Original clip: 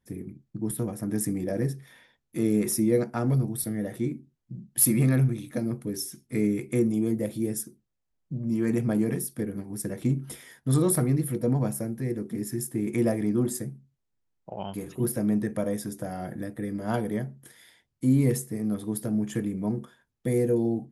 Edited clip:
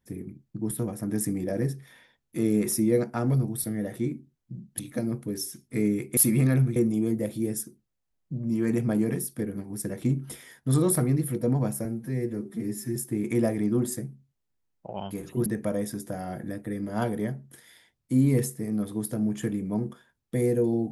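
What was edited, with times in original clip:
4.79–5.38 s: move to 6.76 s
11.85–12.59 s: stretch 1.5×
15.09–15.38 s: delete

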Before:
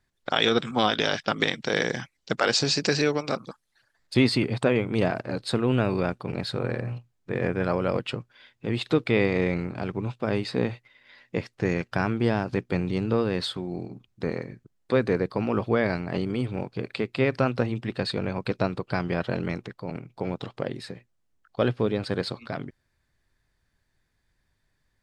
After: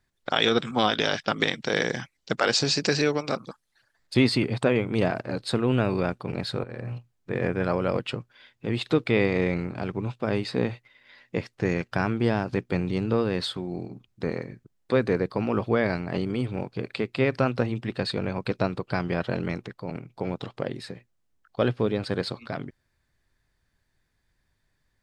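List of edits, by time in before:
6.64–6.95 s: fade in, from -19 dB

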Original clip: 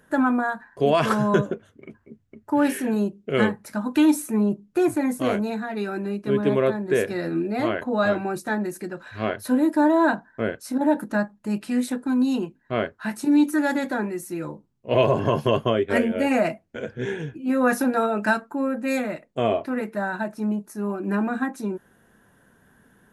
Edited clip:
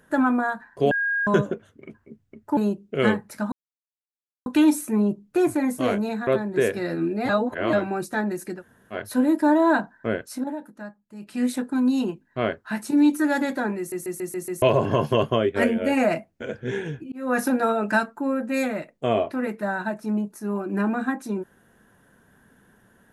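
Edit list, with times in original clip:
0.91–1.27 s: bleep 1.63 kHz -21 dBFS
2.57–2.92 s: delete
3.87 s: insert silence 0.94 s
5.68–6.61 s: delete
7.63–8.07 s: reverse
8.93–9.29 s: room tone, crossfade 0.10 s
10.66–11.78 s: dip -14.5 dB, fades 0.24 s
14.12 s: stutter in place 0.14 s, 6 plays
17.46–17.77 s: fade in

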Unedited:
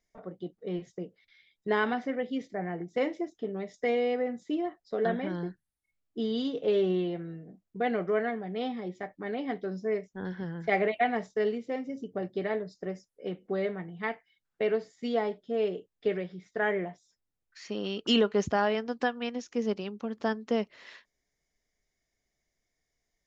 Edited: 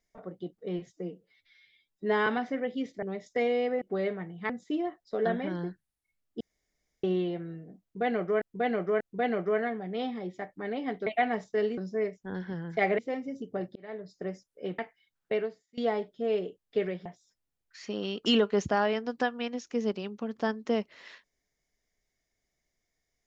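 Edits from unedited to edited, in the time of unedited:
0.93–1.82 s: stretch 1.5×
2.58–3.50 s: delete
6.20–6.83 s: room tone
7.62–8.21 s: loop, 3 plays
10.89–11.60 s: move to 9.68 s
12.37–12.84 s: fade in
13.40–14.08 s: move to 4.29 s
14.62–15.07 s: fade out quadratic, to -21.5 dB
16.35–16.87 s: delete

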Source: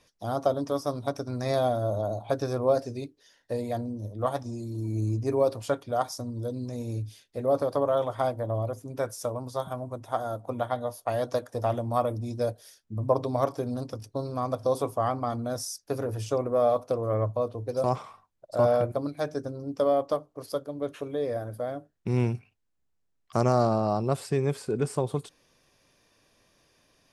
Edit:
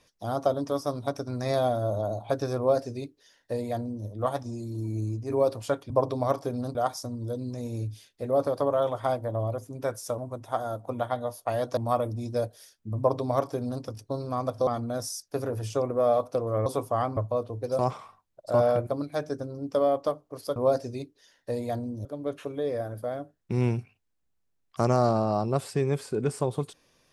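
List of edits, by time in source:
2.58–4.07 s: copy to 20.61 s
4.81–5.30 s: fade out, to -6.5 dB
9.33–9.78 s: delete
11.37–11.82 s: delete
13.03–13.88 s: copy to 5.90 s
14.72–15.23 s: move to 17.22 s

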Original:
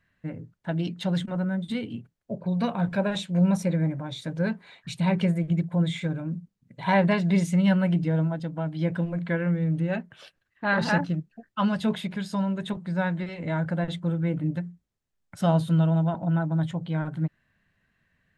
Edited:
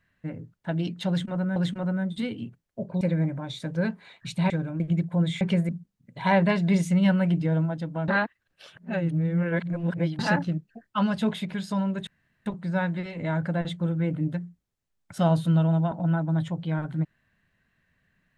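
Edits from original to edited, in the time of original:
1.08–1.56 s: loop, 2 plays
2.53–3.63 s: delete
5.12–5.40 s: swap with 6.01–6.31 s
8.70–10.81 s: reverse
12.69 s: insert room tone 0.39 s

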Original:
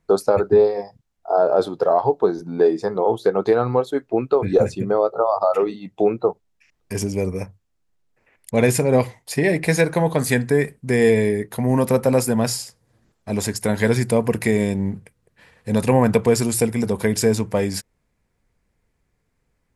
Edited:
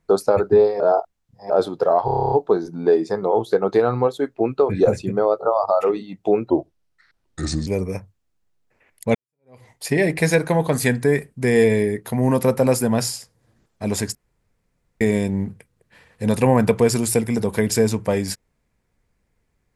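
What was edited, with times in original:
0.80–1.50 s: reverse
2.05 s: stutter 0.03 s, 10 plays
6.23–7.13 s: speed 77%
8.61–9.16 s: fade in exponential
13.61–14.47 s: room tone

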